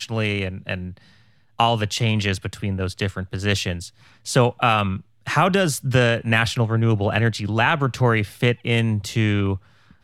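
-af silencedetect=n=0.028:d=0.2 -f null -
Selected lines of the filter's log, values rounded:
silence_start: 0.92
silence_end: 1.59 | silence_duration: 0.67
silence_start: 3.88
silence_end: 4.26 | silence_duration: 0.39
silence_start: 4.98
silence_end: 5.27 | silence_duration: 0.29
silence_start: 9.57
silence_end: 10.03 | silence_duration: 0.46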